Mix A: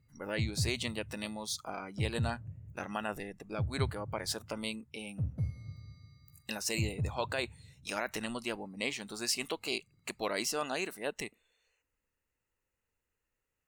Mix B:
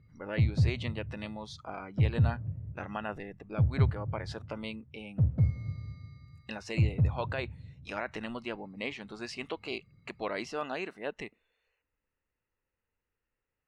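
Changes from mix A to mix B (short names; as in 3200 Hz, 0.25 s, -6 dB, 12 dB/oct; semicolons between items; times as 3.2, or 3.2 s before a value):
background +8.5 dB; master: add LPF 2800 Hz 12 dB/oct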